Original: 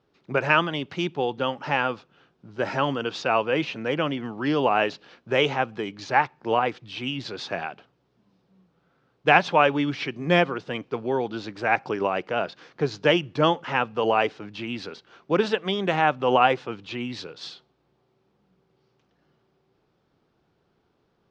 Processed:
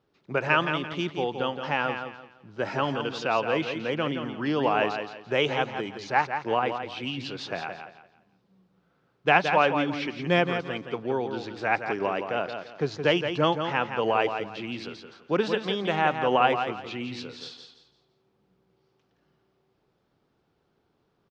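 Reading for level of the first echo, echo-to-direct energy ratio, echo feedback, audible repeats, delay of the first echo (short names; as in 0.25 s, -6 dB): -7.5 dB, -7.0 dB, 29%, 3, 0.17 s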